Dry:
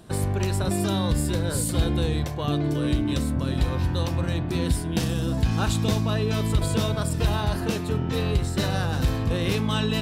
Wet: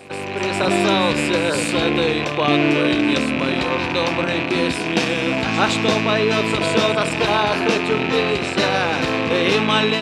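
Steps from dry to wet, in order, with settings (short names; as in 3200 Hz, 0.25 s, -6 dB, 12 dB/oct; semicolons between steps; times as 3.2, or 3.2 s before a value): rattling part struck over -29 dBFS, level -23 dBFS; AGC gain up to 11 dB; HPF 340 Hz 12 dB/oct; air absorption 100 m; on a send: reverse echo 0.164 s -13 dB; on the sum: gain +3.5 dB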